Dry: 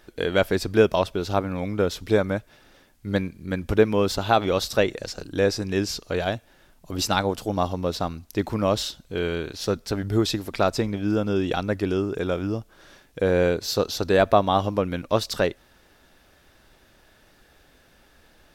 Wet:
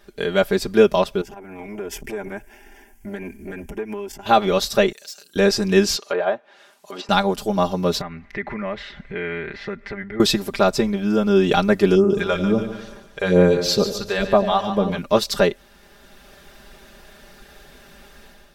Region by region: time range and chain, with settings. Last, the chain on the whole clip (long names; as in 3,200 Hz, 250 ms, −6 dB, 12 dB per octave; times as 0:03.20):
0:01.21–0:04.26: phaser with its sweep stopped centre 810 Hz, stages 8 + downward compressor 12 to 1, threshold −33 dBFS + saturating transformer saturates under 400 Hz
0:04.92–0:05.36: mains-hum notches 60/120/180/240/300/360/420/480/540/600 Hz + de-essing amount 80% + first difference
0:05.96–0:07.09: high-pass filter 520 Hz + treble cut that deepens with the level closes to 1,300 Hz, closed at −28 dBFS
0:08.01–0:10.20: downward compressor 3 to 1, threshold −41 dBFS + low-pass with resonance 2,000 Hz, resonance Q 9.6
0:11.95–0:14.98: high-shelf EQ 9,600 Hz −10.5 dB + all-pass phaser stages 2, 2.2 Hz, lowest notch 190–4,000 Hz + echo with a time of its own for lows and highs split 630 Hz, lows 88 ms, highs 145 ms, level −9 dB
whole clip: comb filter 5 ms, depth 87%; automatic gain control gain up to 9 dB; level −1 dB